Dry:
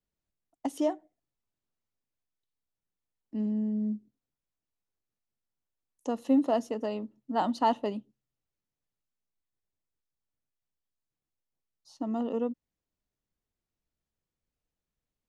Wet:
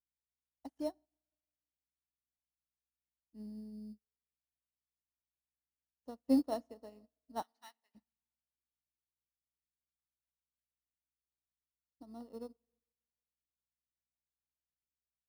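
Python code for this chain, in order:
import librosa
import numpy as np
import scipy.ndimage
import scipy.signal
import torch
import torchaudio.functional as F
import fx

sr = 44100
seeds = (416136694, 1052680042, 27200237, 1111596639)

p1 = fx.add_hum(x, sr, base_hz=60, snr_db=19)
p2 = fx.sample_hold(p1, sr, seeds[0], rate_hz=4800.0, jitter_pct=0)
p3 = p1 + (p2 * librosa.db_to_amplitude(-3.0))
p4 = fx.highpass_res(p3, sr, hz=1900.0, q=2.1, at=(7.42, 7.95))
p5 = fx.rev_schroeder(p4, sr, rt60_s=2.4, comb_ms=27, drr_db=13.5)
p6 = fx.upward_expand(p5, sr, threshold_db=-48.0, expansion=2.5)
y = p6 * librosa.db_to_amplitude(-8.5)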